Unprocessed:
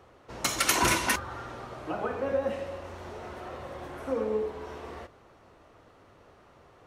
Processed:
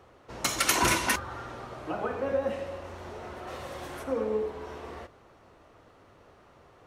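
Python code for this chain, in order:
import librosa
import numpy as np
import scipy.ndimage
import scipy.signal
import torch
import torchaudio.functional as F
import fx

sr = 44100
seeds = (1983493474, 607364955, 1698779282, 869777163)

y = fx.high_shelf(x, sr, hz=2800.0, db=11.5, at=(3.47, 4.02), fade=0.02)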